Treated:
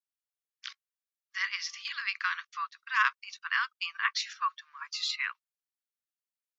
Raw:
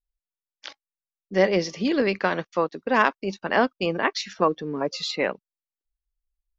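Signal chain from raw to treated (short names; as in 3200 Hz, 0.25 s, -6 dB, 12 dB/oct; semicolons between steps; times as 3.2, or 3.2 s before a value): steep high-pass 1100 Hz 72 dB/oct; gain -2.5 dB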